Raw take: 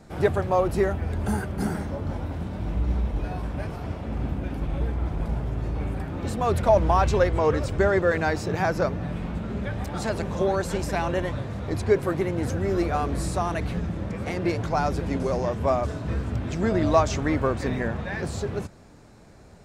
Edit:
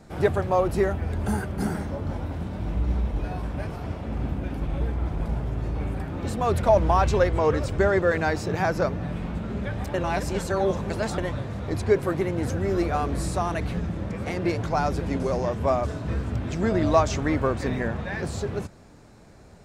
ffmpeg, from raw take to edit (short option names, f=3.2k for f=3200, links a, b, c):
-filter_complex "[0:a]asplit=3[a][b][c];[a]atrim=end=9.942[d];[b]atrim=start=9.938:end=11.182,asetpts=PTS-STARTPTS,areverse[e];[c]atrim=start=11.178[f];[d][e]acrossfade=d=0.004:c1=hsin:c2=hsin[g];[g][f]acrossfade=d=0.004:c1=hsin:c2=hsin"